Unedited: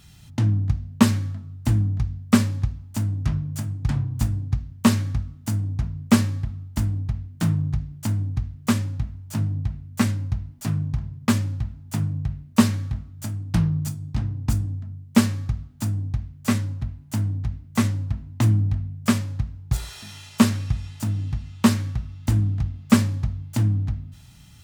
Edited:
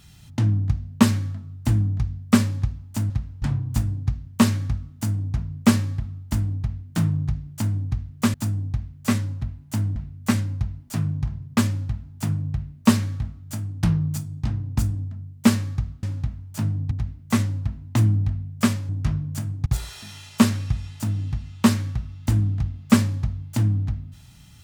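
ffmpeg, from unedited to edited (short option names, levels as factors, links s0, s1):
-filter_complex "[0:a]asplit=9[s0][s1][s2][s3][s4][s5][s6][s7][s8];[s0]atrim=end=3.102[s9];[s1]atrim=start=19.338:end=19.662[s10];[s2]atrim=start=3.868:end=8.792[s11];[s3]atrim=start=15.738:end=17.362[s12];[s4]atrim=start=9.668:end=15.742[s13];[s5]atrim=start=8.788:end=9.672[s14];[s6]atrim=start=17.358:end=19.342[s15];[s7]atrim=start=3.098:end=3.872[s16];[s8]atrim=start=19.658[s17];[s9][s10]acrossfade=d=0.004:c1=hsin:c2=hsin[s18];[s18][s11]acrossfade=d=0.004:c1=hsin:c2=hsin[s19];[s19][s12]acrossfade=d=0.004:c1=hsin:c2=hsin[s20];[s20][s13]acrossfade=d=0.004:c1=hsin:c2=hsin[s21];[s21][s14]acrossfade=d=0.004:c1=hsin:c2=hsin[s22];[s22][s15]acrossfade=d=0.004:c1=hsin:c2=hsin[s23];[s23][s16]acrossfade=d=0.004:c1=hsin:c2=hsin[s24];[s24][s17]acrossfade=d=0.004:c1=hsin:c2=hsin"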